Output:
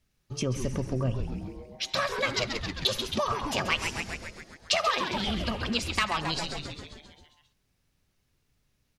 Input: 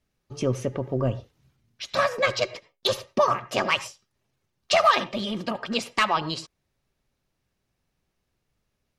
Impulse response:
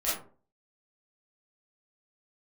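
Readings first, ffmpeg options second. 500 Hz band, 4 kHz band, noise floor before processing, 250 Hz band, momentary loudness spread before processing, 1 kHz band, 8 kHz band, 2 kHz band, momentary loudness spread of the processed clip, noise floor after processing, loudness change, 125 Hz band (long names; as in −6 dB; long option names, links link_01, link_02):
−7.0 dB, 0.0 dB, −78 dBFS, −1.5 dB, 11 LU, −6.0 dB, +1.0 dB, −2.5 dB, 12 LU, −74 dBFS, −4.5 dB, 0.0 dB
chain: -filter_complex "[0:a]asplit=2[link_01][link_02];[link_02]asplit=8[link_03][link_04][link_05][link_06][link_07][link_08][link_09][link_10];[link_03]adelay=134,afreqshift=-150,volume=-8.5dB[link_11];[link_04]adelay=268,afreqshift=-300,volume=-12.5dB[link_12];[link_05]adelay=402,afreqshift=-450,volume=-16.5dB[link_13];[link_06]adelay=536,afreqshift=-600,volume=-20.5dB[link_14];[link_07]adelay=670,afreqshift=-750,volume=-24.6dB[link_15];[link_08]adelay=804,afreqshift=-900,volume=-28.6dB[link_16];[link_09]adelay=938,afreqshift=-1050,volume=-32.6dB[link_17];[link_10]adelay=1072,afreqshift=-1200,volume=-36.6dB[link_18];[link_11][link_12][link_13][link_14][link_15][link_16][link_17][link_18]amix=inputs=8:normalize=0[link_19];[link_01][link_19]amix=inputs=2:normalize=0,acompressor=threshold=-29dB:ratio=2,equalizer=frequency=570:width_type=o:width=2.9:gain=-7,volume=4.5dB"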